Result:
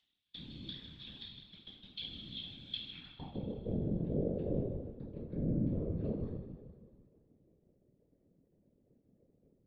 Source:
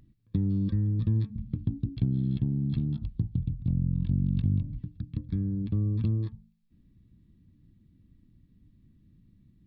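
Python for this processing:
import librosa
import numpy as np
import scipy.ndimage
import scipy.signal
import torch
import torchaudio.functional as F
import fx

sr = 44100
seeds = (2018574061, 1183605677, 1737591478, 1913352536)

p1 = scipy.signal.sosfilt(scipy.signal.cheby1(3, 1.0, [250.0, 660.0], 'bandstop', fs=sr, output='sos'), x)
p2 = fx.leveller(p1, sr, passes=1)
p3 = fx.filter_sweep_bandpass(p2, sr, from_hz=3400.0, to_hz=460.0, start_s=2.85, end_s=3.38, q=7.7)
p4 = p3 + fx.echo_feedback(p3, sr, ms=153, feedback_pct=56, wet_db=-11.5, dry=0)
p5 = fx.rev_double_slope(p4, sr, seeds[0], early_s=0.6, late_s=2.4, knee_db=-18, drr_db=-5.5)
p6 = fx.whisperise(p5, sr, seeds[1])
y = p6 * 10.0 ** (9.5 / 20.0)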